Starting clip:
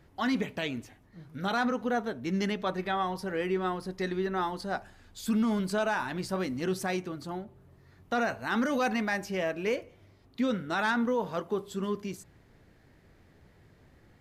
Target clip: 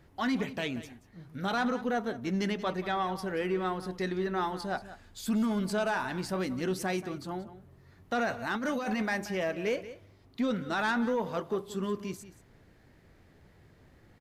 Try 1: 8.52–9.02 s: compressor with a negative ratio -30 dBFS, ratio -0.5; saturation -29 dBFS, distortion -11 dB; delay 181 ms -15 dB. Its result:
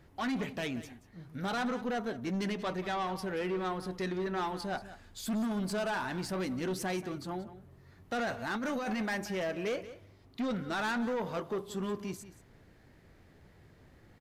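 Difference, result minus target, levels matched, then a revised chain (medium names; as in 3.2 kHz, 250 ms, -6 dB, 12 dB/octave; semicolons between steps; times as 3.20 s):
saturation: distortion +11 dB
8.52–9.02 s: compressor with a negative ratio -30 dBFS, ratio -0.5; saturation -20.5 dBFS, distortion -23 dB; delay 181 ms -15 dB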